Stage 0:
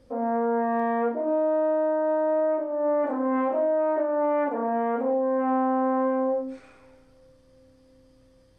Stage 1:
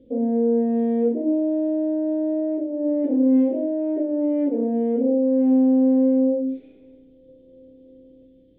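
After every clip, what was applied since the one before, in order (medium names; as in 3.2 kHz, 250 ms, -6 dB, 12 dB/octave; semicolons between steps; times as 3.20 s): FFT filter 120 Hz 0 dB, 270 Hz +14 dB, 490 Hz +8 dB, 1.2 kHz -28 dB, 2.1 kHz -9 dB, 3.5 kHz +2 dB, 5.1 kHz -29 dB; time-frequency box 7.28–8.26 s, 330–1400 Hz +6 dB; trim -3 dB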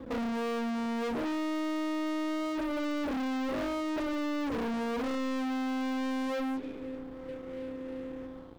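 compression 2:1, threshold -29 dBFS, peak gain reduction 8.5 dB; waveshaping leveller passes 3; saturation -31.5 dBFS, distortion -10 dB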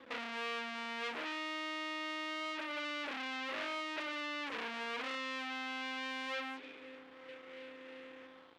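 band-pass filter 2.6 kHz, Q 1.2; trim +4.5 dB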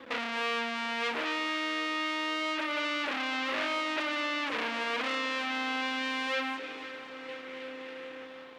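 echo whose repeats swap between lows and highs 253 ms, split 1.3 kHz, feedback 80%, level -12 dB; trim +8 dB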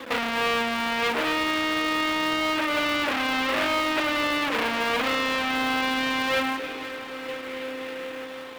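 in parallel at -10.5 dB: sample-rate reducer 3.1 kHz, jitter 20%; on the sum: tape noise reduction on one side only encoder only; trim +6.5 dB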